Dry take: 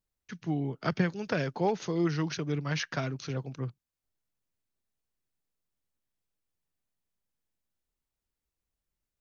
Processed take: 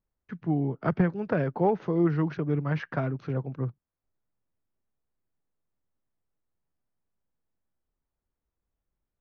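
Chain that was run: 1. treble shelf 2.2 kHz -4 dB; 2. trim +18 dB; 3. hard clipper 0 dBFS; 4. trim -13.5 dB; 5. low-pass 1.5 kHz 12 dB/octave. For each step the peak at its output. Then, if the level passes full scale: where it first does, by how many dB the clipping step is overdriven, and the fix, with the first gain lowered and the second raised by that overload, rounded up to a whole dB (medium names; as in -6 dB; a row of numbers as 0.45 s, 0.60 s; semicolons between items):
-13.5 dBFS, +4.5 dBFS, 0.0 dBFS, -13.5 dBFS, -13.0 dBFS; step 2, 4.5 dB; step 2 +13 dB, step 4 -8.5 dB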